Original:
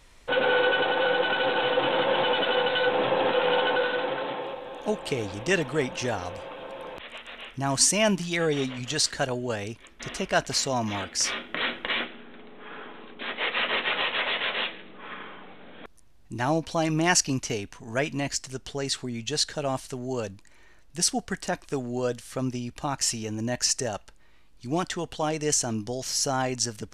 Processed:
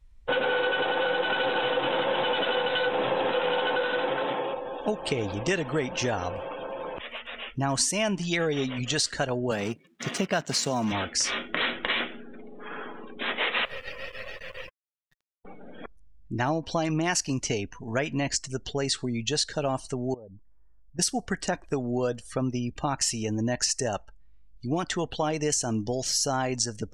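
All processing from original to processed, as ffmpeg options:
ffmpeg -i in.wav -filter_complex "[0:a]asettb=1/sr,asplit=3[link_01][link_02][link_03];[link_01]atrim=end=9.514[link_04];[link_02]atrim=start=9.51:end=10.92,asetpts=PTS-STARTPTS,afade=type=in:duration=0.004:curve=qsin,afade=type=out:start_time=1.406:duration=0.004:curve=qsin,acrusher=bits=7:dc=4:mix=0:aa=0.000001,highpass=frequency=160:width_type=q:width=1.8[link_05];[link_03]atrim=start=10.916[link_06];[link_04][link_05]acrossfade=duration=0.004:curve1=hsin:curve2=qsin[link_07];[link_07][link_06]acrossfade=duration=0.004:curve1=qsin:curve2=hsin,asettb=1/sr,asplit=3[link_08][link_09][link_10];[link_08]atrim=end=13.654[link_11];[link_09]atrim=start=13.65:end=15.45,asetpts=PTS-STARTPTS,afade=type=in:duration=0.004:curve=qsin,afade=type=out:start_time=1.796:duration=0.004:curve=qsin,asplit=3[link_12][link_13][link_14];[link_12]bandpass=frequency=530:width_type=q:width=8,volume=0dB[link_15];[link_13]bandpass=frequency=1840:width_type=q:width=8,volume=-6dB[link_16];[link_14]bandpass=frequency=2480:width_type=q:width=8,volume=-9dB[link_17];[link_15][link_16][link_17]amix=inputs=3:normalize=0,acrusher=bits=4:dc=4:mix=0:aa=0.000001[link_18];[link_10]atrim=start=15.446[link_19];[link_11][link_18]acrossfade=duration=0.004:curve1=hsin:curve2=qsin[link_20];[link_20][link_19]acrossfade=duration=0.004:curve1=qsin:curve2=hsin,asettb=1/sr,asplit=3[link_21][link_22][link_23];[link_21]atrim=end=20.144[link_24];[link_22]atrim=start=20.14:end=20.99,asetpts=PTS-STARTPTS,afade=type=in:duration=0.004:curve=qsin,afade=type=out:start_time=0.846:duration=0.004:curve=qsin,lowpass=frequency=1300:width=0.5412,lowpass=frequency=1300:width=1.3066,lowshelf=frequency=470:gain=-3.5,acompressor=threshold=-44dB:ratio=16:attack=3.2:release=140:knee=1:detection=peak[link_25];[link_23]atrim=start=20.986[link_26];[link_24][link_25]acrossfade=duration=0.004:curve1=hsin:curve2=qsin[link_27];[link_27][link_26]acrossfade=duration=0.004:curve1=qsin:curve2=hsin,afftdn=noise_reduction=25:noise_floor=-45,acompressor=threshold=-27dB:ratio=6,volume=4dB" out.wav

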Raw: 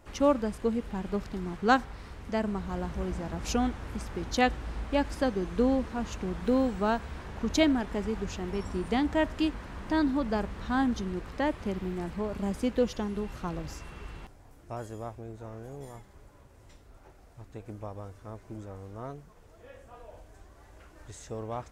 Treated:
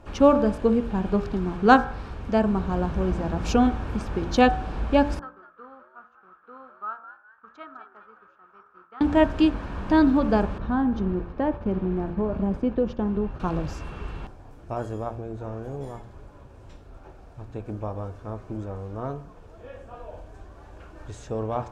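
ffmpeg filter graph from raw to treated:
ffmpeg -i in.wav -filter_complex "[0:a]asettb=1/sr,asplit=3[link_01][link_02][link_03];[link_01]atrim=end=5.194[link_04];[link_02]atrim=start=5.19:end=9.01,asetpts=PTS-STARTPTS,afade=type=in:duration=0.004:curve=qsin,afade=type=out:start_time=3.816:duration=0.004:curve=qsin,agate=range=-33dB:threshold=-31dB:ratio=3:release=100:detection=peak,bandpass=frequency=1300:width_type=q:width=14,asplit=5[link_05][link_06][link_07][link_08][link_09];[link_06]adelay=204,afreqshift=110,volume=-12dB[link_10];[link_07]adelay=408,afreqshift=220,volume=-20.9dB[link_11];[link_08]adelay=612,afreqshift=330,volume=-29.7dB[link_12];[link_09]adelay=816,afreqshift=440,volume=-38.6dB[link_13];[link_05][link_10][link_11][link_12][link_13]amix=inputs=5:normalize=0,atrim=end_sample=168462[link_14];[link_03]atrim=start=9.006[link_15];[link_04][link_14]acrossfade=duration=0.004:curve1=hsin:curve2=qsin[link_16];[link_16][link_15]acrossfade=duration=0.004:curve1=qsin:curve2=hsin,asettb=1/sr,asplit=3[link_17][link_18][link_19];[link_17]atrim=end=10.584[link_20];[link_18]atrim=start=10.58:end=13.4,asetpts=PTS-STARTPTS,afade=type=in:duration=0.004:curve=qsin,afade=type=out:start_time=2.816:duration=0.004:curve=qsin,agate=range=-33dB:threshold=-38dB:ratio=3:release=100:detection=peak,lowpass=frequency=1200:poles=1,acompressor=threshold=-29dB:ratio=2.5:attack=3.2:release=140:knee=1:detection=peak[link_21];[link_19]atrim=start=13.396[link_22];[link_20][link_21]acrossfade=duration=0.004:curve1=hsin:curve2=qsin[link_23];[link_23][link_22]acrossfade=duration=0.004:curve1=qsin:curve2=hsin,aemphasis=mode=reproduction:type=75kf,bandreject=frequency=2000:width=6.8,bandreject=frequency=57.88:width_type=h:width=4,bandreject=frequency=115.76:width_type=h:width=4,bandreject=frequency=173.64:width_type=h:width=4,bandreject=frequency=231.52:width_type=h:width=4,bandreject=frequency=289.4:width_type=h:width=4,bandreject=frequency=347.28:width_type=h:width=4,bandreject=frequency=405.16:width_type=h:width=4,bandreject=frequency=463.04:width_type=h:width=4,bandreject=frequency=520.92:width_type=h:width=4,bandreject=frequency=578.8:width_type=h:width=4,bandreject=frequency=636.68:width_type=h:width=4,bandreject=frequency=694.56:width_type=h:width=4,bandreject=frequency=752.44:width_type=h:width=4,bandreject=frequency=810.32:width_type=h:width=4,bandreject=frequency=868.2:width_type=h:width=4,bandreject=frequency=926.08:width_type=h:width=4,bandreject=frequency=983.96:width_type=h:width=4,bandreject=frequency=1041.84:width_type=h:width=4,bandreject=frequency=1099.72:width_type=h:width=4,bandreject=frequency=1157.6:width_type=h:width=4,bandreject=frequency=1215.48:width_type=h:width=4,bandreject=frequency=1273.36:width_type=h:width=4,bandreject=frequency=1331.24:width_type=h:width=4,bandreject=frequency=1389.12:width_type=h:width=4,bandreject=frequency=1447:width_type=h:width=4,bandreject=frequency=1504.88:width_type=h:width=4,bandreject=frequency=1562.76:width_type=h:width=4,bandreject=frequency=1620.64:width_type=h:width=4,bandreject=frequency=1678.52:width_type=h:width=4,bandreject=frequency=1736.4:width_type=h:width=4,bandreject=frequency=1794.28:width_type=h:width=4,volume=9dB" out.wav

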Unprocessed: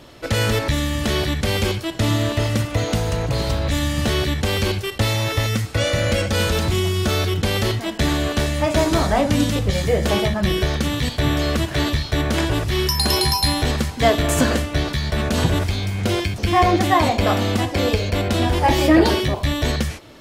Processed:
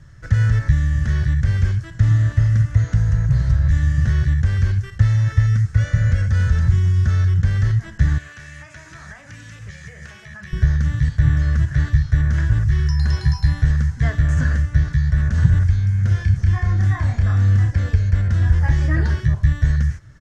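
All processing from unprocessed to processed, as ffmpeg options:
ffmpeg -i in.wav -filter_complex "[0:a]asettb=1/sr,asplit=3[link_01][link_02][link_03];[link_01]atrim=end=8.184[link_04];[link_02]atrim=start=8.18:end=10.53,asetpts=PTS-STARTPTS,afade=type=in:duration=0.004:curve=qsin,afade=type=out:start_time=2.346:duration=0.004:curve=qsin,highpass=frequency=900:poles=1,equalizer=frequency=2500:width=3.6:gain=9,acompressor=threshold=-26dB:ratio=5:attack=3.2:release=140:knee=1:detection=peak[link_05];[link_03]atrim=start=10.526[link_06];[link_04][link_05]acrossfade=duration=0.004:curve1=hsin:curve2=qsin[link_07];[link_07][link_06]acrossfade=duration=0.004:curve1=qsin:curve2=hsin,asettb=1/sr,asplit=3[link_08][link_09][link_10];[link_08]atrim=end=16.084[link_11];[link_09]atrim=start=16.08:end=17.71,asetpts=PTS-STARTPTS,afade=type=in:duration=0.004:curve=qsin,afade=type=out:start_time=1.626:duration=0.004:curve=qsin,acompressor=threshold=-17dB:ratio=3:attack=3.2:release=140:knee=1:detection=peak,asplit=2[link_12][link_13];[link_13]adelay=30,volume=-2.5dB[link_14];[link_12][link_14]amix=inputs=2:normalize=0,atrim=end_sample=71883[link_15];[link_10]atrim=start=17.706[link_16];[link_11][link_15]acrossfade=duration=0.004:curve1=hsin:curve2=qsin[link_17];[link_17][link_16]acrossfade=duration=0.004:curve1=qsin:curve2=hsin,highshelf=frequency=12000:gain=-11,acrossover=split=5400[link_18][link_19];[link_19]acompressor=threshold=-46dB:ratio=4:attack=1:release=60[link_20];[link_18][link_20]amix=inputs=2:normalize=0,firequalizer=gain_entry='entry(140,0);entry(230,-20);entry(360,-25);entry(790,-26);entry(1700,-7);entry(2400,-25);entry(4000,-25);entry(6100,-11);entry(14000,-27)':delay=0.05:min_phase=1,volume=7dB" out.wav

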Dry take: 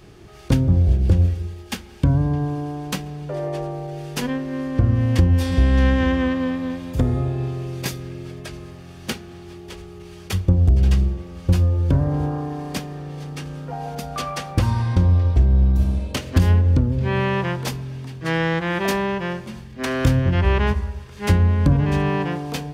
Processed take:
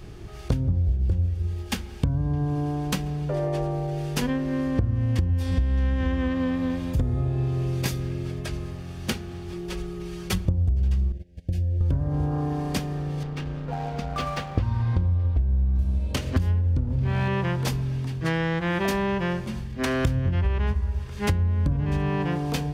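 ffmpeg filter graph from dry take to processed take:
ffmpeg -i in.wav -filter_complex "[0:a]asettb=1/sr,asplit=3[link_01][link_02][link_03];[link_01]atrim=end=9.524[link_04];[link_02]atrim=start=9.52:end=10.45,asetpts=PTS-STARTPTS,afade=type=in:duration=0.004:curve=qsin,afade=type=out:start_time=0.926:duration=0.004:curve=qsin,aecho=1:1:5.5:0.73,atrim=end_sample=41013,aeval=exprs='clip(val(0),-1,0.1)':channel_layout=same[link_05];[link_03]atrim=start=10.446[link_06];[link_04][link_05]acrossfade=duration=0.004:curve1=hsin:curve2=qsin[link_07];[link_07][link_06]acrossfade=duration=0.004:curve1=qsin:curve2=hsin,asettb=1/sr,asplit=3[link_08][link_09][link_10];[link_08]atrim=end=11.124[link_11];[link_09]atrim=start=11.12:end=11.81,asetpts=PTS-STARTPTS,afade=type=in:duration=0.004:curve=qsin,afade=type=out:start_time=0.686:duration=0.004:curve=qsin,acompressor=threshold=-28dB:ratio=5:attack=3.2:release=140:knee=1:detection=peak,agate=range=-22dB:threshold=-33dB:ratio=16:release=100:detection=peak,asuperstop=centerf=1100:order=12:qfactor=1.3[link_12];[link_10]atrim=start=11.806[link_13];[link_11][link_12]acrossfade=duration=0.004:curve1=hsin:curve2=qsin[link_14];[link_14][link_13]acrossfade=duration=0.004:curve1=qsin:curve2=hsin,asettb=1/sr,asplit=3[link_15][link_16][link_17];[link_15]atrim=end=13.234[link_18];[link_16]atrim=start=13.23:end=15.79,asetpts=PTS-STARTPTS,afade=type=in:duration=0.004:curve=qsin,afade=type=out:start_time=2.556:duration=0.004:curve=qsin,lowpass=3900,aeval=exprs='sgn(val(0))*max(abs(val(0))-0.00944,0)':channel_layout=same[link_19];[link_17]atrim=start=15.786[link_20];[link_18][link_19]acrossfade=duration=0.004:curve1=hsin:curve2=qsin[link_21];[link_21][link_20]acrossfade=duration=0.004:curve1=qsin:curve2=hsin,asettb=1/sr,asplit=3[link_22][link_23][link_24];[link_22]atrim=end=16.834[link_25];[link_23]atrim=start=16.83:end=17.28,asetpts=PTS-STARTPTS,afade=type=in:duration=0.004:curve=qsin,afade=type=out:start_time=0.446:duration=0.004:curve=qsin,volume=17dB,asoftclip=hard,volume=-17dB,asplit=2[link_26][link_27];[link_27]adelay=45,volume=-6dB[link_28];[link_26][link_28]amix=inputs=2:normalize=0,atrim=end_sample=19845[link_29];[link_24]atrim=start=17.276[link_30];[link_25][link_29]acrossfade=duration=0.004:curve1=hsin:curve2=qsin[link_31];[link_31][link_30]acrossfade=duration=0.004:curve1=qsin:curve2=hsin,lowshelf=frequency=100:gain=11.5,acompressor=threshold=-21dB:ratio=6" out.wav

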